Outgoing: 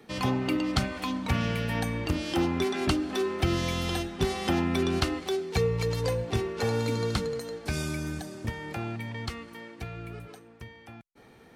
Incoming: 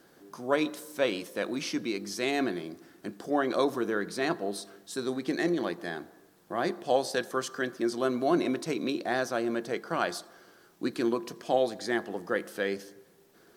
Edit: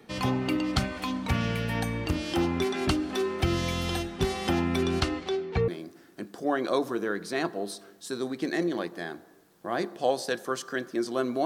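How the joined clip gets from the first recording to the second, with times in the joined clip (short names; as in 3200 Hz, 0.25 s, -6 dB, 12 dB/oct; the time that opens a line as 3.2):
outgoing
5–5.68 LPF 10000 Hz -> 1800 Hz
5.68 switch to incoming from 2.54 s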